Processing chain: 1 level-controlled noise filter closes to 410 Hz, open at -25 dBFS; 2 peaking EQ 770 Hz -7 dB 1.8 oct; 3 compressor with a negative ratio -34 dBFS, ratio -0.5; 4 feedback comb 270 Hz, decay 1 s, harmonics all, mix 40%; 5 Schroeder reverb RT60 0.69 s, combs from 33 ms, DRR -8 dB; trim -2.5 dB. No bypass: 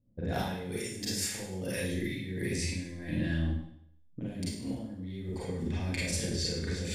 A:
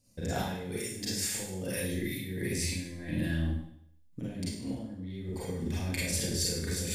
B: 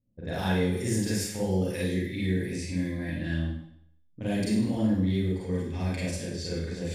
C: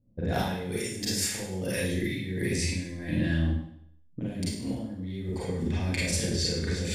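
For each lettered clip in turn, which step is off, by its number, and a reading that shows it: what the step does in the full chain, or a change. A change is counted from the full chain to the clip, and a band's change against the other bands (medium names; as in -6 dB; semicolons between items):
1, 8 kHz band +3.5 dB; 3, 8 kHz band -6.0 dB; 4, loudness change +4.5 LU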